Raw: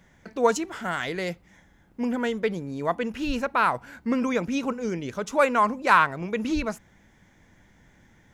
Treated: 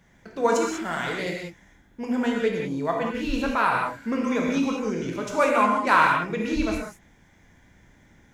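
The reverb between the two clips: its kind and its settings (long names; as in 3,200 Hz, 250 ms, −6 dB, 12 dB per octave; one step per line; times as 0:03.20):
reverb whose tail is shaped and stops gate 220 ms flat, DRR −1.5 dB
level −2.5 dB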